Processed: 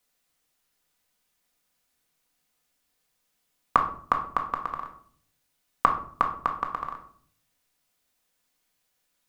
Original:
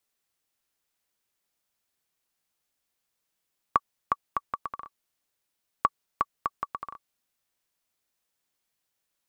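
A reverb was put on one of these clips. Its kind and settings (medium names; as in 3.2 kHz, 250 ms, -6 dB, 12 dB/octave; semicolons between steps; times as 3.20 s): simulated room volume 660 m³, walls furnished, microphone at 1.9 m; trim +4 dB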